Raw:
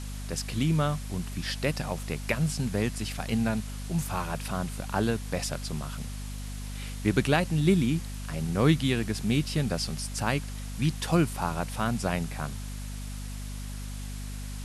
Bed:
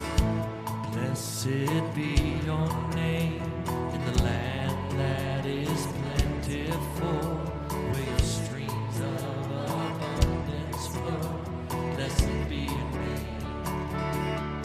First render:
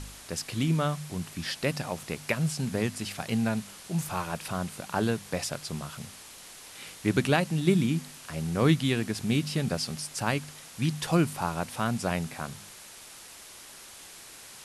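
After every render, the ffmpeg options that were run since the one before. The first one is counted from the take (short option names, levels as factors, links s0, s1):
-af "bandreject=f=50:t=h:w=4,bandreject=f=100:t=h:w=4,bandreject=f=150:t=h:w=4,bandreject=f=200:t=h:w=4,bandreject=f=250:t=h:w=4"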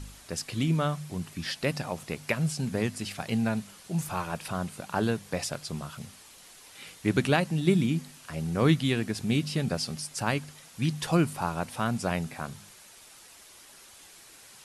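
-af "afftdn=nr=6:nf=-48"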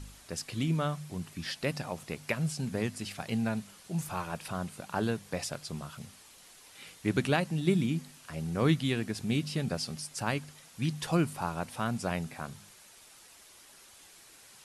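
-af "volume=0.668"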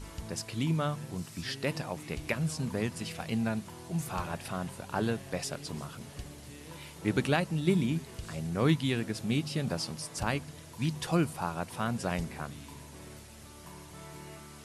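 -filter_complex "[1:a]volume=0.133[s0];[0:a][s0]amix=inputs=2:normalize=0"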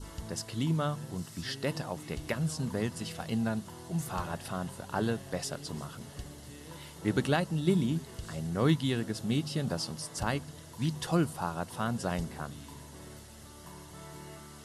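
-af "bandreject=f=2400:w=5.8,adynamicequalizer=threshold=0.00178:dfrequency=2000:dqfactor=3.3:tfrequency=2000:tqfactor=3.3:attack=5:release=100:ratio=0.375:range=2:mode=cutabove:tftype=bell"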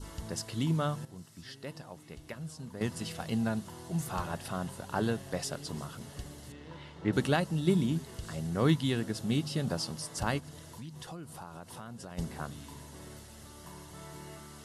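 -filter_complex "[0:a]asettb=1/sr,asplit=3[s0][s1][s2];[s0]atrim=end=6.524[s3];[s1]atrim=start=6.52:end=7.13,asetpts=PTS-STARTPTS,afade=t=in:d=0.004:c=qsin,afade=t=out:st=0.606:d=0.004:c=qsin,lowpass=3300[s4];[s2]atrim=start=7.126[s5];[s3][s4]acrossfade=d=0.004:c1=hsin:c2=qsin[s6];[s6][s5]acrossfade=d=0.004:c1=qsin:c2=hsin,asplit=3[s7][s8][s9];[s7]afade=t=out:st=10.39:d=0.02[s10];[s8]acompressor=threshold=0.00794:ratio=5:attack=3.2:release=140:knee=1:detection=peak,afade=t=in:st=10.39:d=0.02,afade=t=out:st=12.17:d=0.02[s11];[s9]afade=t=in:st=12.17:d=0.02[s12];[s10][s11][s12]amix=inputs=3:normalize=0,asplit=3[s13][s14][s15];[s13]atrim=end=1.052[s16];[s14]atrim=start=1.048:end=2.812,asetpts=PTS-STARTPTS,volume=0.316[s17];[s15]atrim=start=2.808[s18];[s16][s17]acrossfade=d=0.004:c1=hsin:c2=hsin[s19];[s19][s18]acrossfade=d=0.004:c1=hsin:c2=hsin"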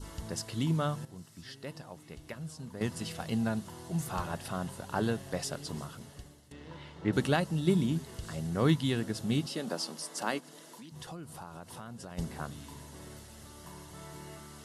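-filter_complex "[0:a]asettb=1/sr,asplit=3[s0][s1][s2];[s0]atrim=end=9.464[s3];[s1]atrim=start=9.46:end=10.92,asetpts=PTS-STARTPTS,afade=t=in:d=0.004:c=qsin,afade=t=out:st=1.456:d=0.004:c=qsin,highpass=f=220:w=0.5412,highpass=f=220:w=1.3066[s4];[s2]atrim=start=10.916[s5];[s3][s4]acrossfade=d=0.004:c1=hsin:c2=qsin[s6];[s6][s5]acrossfade=d=0.004:c1=qsin:c2=hsin,asplit=2[s7][s8];[s7]atrim=end=6.51,asetpts=PTS-STARTPTS,afade=t=out:st=5.77:d=0.74:silence=0.158489[s9];[s8]atrim=start=6.51,asetpts=PTS-STARTPTS,afade=t=in:d=0.004:c=hsin:silence=0.158489[s10];[s9][s10]concat=n=2:v=0:a=1"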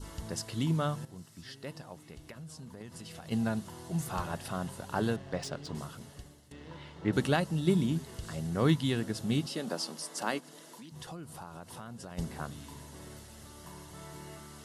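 -filter_complex "[0:a]asplit=3[s0][s1][s2];[s0]afade=t=out:st=1.98:d=0.02[s3];[s1]acompressor=threshold=0.00794:ratio=6:attack=3.2:release=140:knee=1:detection=peak,afade=t=in:st=1.98:d=0.02,afade=t=out:st=3.3:d=0.02[s4];[s2]afade=t=in:st=3.3:d=0.02[s5];[s3][s4][s5]amix=inputs=3:normalize=0,asettb=1/sr,asplit=3[s6][s7][s8];[s6]atrim=end=5.164[s9];[s7]atrim=start=5.16:end=5.75,asetpts=PTS-STARTPTS,afade=t=in:d=0.004:c=qsin,afade=t=out:st=0.586:d=0.004:c=qsin,adynamicsmooth=sensitivity=7.5:basefreq=4000[s10];[s8]atrim=start=5.746[s11];[s9][s10]acrossfade=d=0.004:c1=hsin:c2=qsin[s12];[s12][s11]acrossfade=d=0.004:c1=qsin:c2=hsin"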